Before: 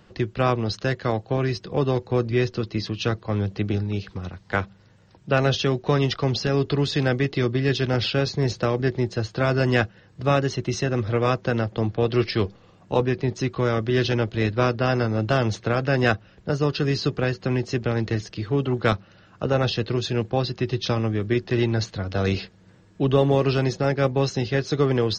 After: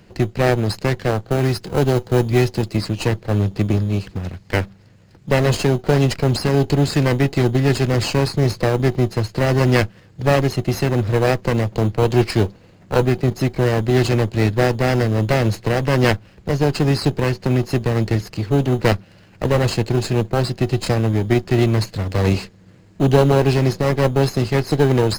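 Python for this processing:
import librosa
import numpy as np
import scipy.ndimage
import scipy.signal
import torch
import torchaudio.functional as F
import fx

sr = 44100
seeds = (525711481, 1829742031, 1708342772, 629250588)

p1 = fx.lower_of_two(x, sr, delay_ms=0.43)
p2 = fx.sample_hold(p1, sr, seeds[0], rate_hz=3400.0, jitter_pct=0)
p3 = p1 + (p2 * 10.0 ** (-11.0 / 20.0))
p4 = fx.high_shelf(p3, sr, hz=5700.0, db=6.0, at=(1.31, 2.77))
y = p4 * 10.0 ** (4.0 / 20.0)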